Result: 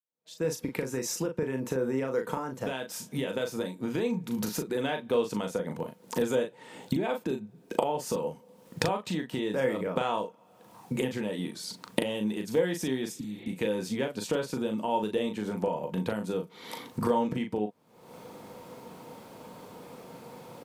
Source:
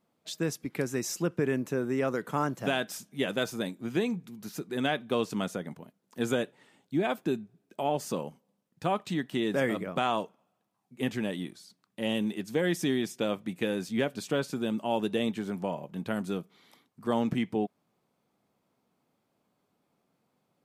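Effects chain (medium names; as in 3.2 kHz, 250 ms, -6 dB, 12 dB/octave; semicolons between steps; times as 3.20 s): fade-in on the opening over 4.62 s; recorder AGC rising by 59 dB/s; spectral replace 13.18–13.46 s, 320–4500 Hz both; doubling 38 ms -6 dB; small resonant body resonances 490/920 Hz, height 12 dB, ringing for 70 ms; trim -4.5 dB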